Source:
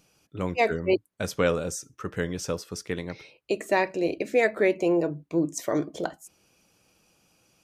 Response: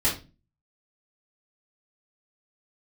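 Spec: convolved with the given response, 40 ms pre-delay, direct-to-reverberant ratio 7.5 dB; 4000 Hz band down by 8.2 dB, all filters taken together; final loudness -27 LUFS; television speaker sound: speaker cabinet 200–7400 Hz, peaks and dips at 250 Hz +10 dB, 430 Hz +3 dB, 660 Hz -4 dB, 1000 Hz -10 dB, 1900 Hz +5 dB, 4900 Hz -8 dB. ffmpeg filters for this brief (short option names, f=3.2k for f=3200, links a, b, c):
-filter_complex "[0:a]equalizer=f=4k:t=o:g=-9,asplit=2[a][b];[1:a]atrim=start_sample=2205,adelay=40[c];[b][c]afir=irnorm=-1:irlink=0,volume=-19dB[d];[a][d]amix=inputs=2:normalize=0,highpass=f=200:w=0.5412,highpass=f=200:w=1.3066,equalizer=f=250:t=q:w=4:g=10,equalizer=f=430:t=q:w=4:g=3,equalizer=f=660:t=q:w=4:g=-4,equalizer=f=1k:t=q:w=4:g=-10,equalizer=f=1.9k:t=q:w=4:g=5,equalizer=f=4.9k:t=q:w=4:g=-8,lowpass=f=7.4k:w=0.5412,lowpass=f=7.4k:w=1.3066,volume=-1.5dB"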